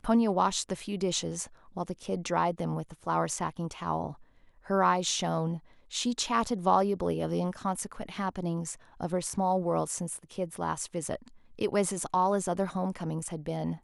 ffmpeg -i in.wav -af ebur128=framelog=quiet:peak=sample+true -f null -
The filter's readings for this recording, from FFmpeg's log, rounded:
Integrated loudness:
  I:         -30.8 LUFS
  Threshold: -41.0 LUFS
Loudness range:
  LRA:         3.6 LU
  Threshold: -51.1 LUFS
  LRA low:   -32.6 LUFS
  LRA high:  -29.0 LUFS
Sample peak:
  Peak:      -11.6 dBFS
True peak:
  Peak:      -11.6 dBFS